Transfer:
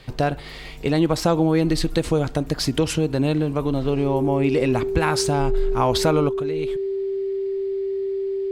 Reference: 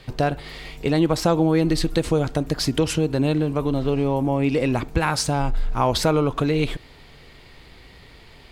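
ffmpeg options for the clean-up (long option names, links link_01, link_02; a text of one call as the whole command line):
ffmpeg -i in.wav -af "bandreject=frequency=390:width=30,asetnsamples=nb_out_samples=441:pad=0,asendcmd='6.29 volume volume 10dB',volume=0dB" out.wav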